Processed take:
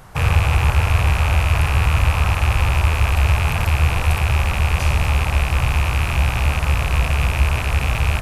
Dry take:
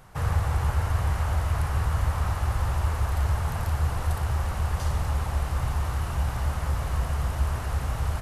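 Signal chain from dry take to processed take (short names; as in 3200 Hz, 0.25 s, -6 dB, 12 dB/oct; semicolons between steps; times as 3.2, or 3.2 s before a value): rattling part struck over -33 dBFS, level -21 dBFS; gain +8.5 dB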